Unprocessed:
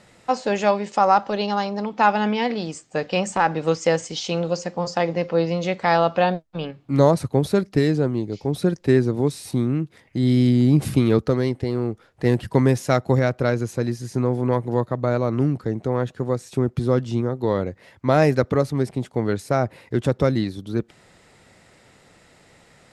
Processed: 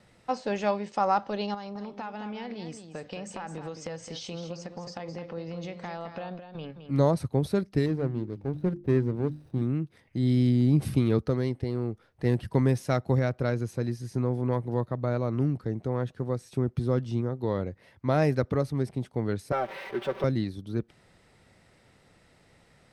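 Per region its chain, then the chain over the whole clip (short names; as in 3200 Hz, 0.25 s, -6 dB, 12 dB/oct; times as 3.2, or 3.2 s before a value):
1.54–6.91 compressor 4:1, threshold -27 dBFS + echo 0.214 s -9 dB
7.86–9.62 median filter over 41 samples + high shelf 3600 Hz -6.5 dB + notches 50/100/150/200/250/300/350 Hz
19.52–20.24 zero-crossing step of -26.5 dBFS + three-band isolator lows -20 dB, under 360 Hz, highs -18 dB, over 3600 Hz + comb 5.2 ms, depth 78%
whole clip: notch 7100 Hz, Q 6.6; gate with hold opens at -47 dBFS; low shelf 160 Hz +6.5 dB; gain -8.5 dB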